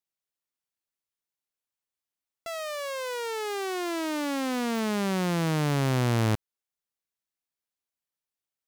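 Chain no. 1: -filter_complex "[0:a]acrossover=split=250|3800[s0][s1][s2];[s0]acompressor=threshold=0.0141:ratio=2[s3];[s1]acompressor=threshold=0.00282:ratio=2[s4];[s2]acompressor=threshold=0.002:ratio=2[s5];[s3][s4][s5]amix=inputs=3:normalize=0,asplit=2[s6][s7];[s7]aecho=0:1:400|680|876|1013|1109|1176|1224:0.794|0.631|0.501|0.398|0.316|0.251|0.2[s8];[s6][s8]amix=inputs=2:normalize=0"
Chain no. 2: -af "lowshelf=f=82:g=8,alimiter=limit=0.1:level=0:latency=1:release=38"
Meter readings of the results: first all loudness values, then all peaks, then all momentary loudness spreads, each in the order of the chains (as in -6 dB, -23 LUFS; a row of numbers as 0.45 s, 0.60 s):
-33.0 LUFS, -29.5 LUFS; -18.5 dBFS, -20.0 dBFS; 15 LU, 7 LU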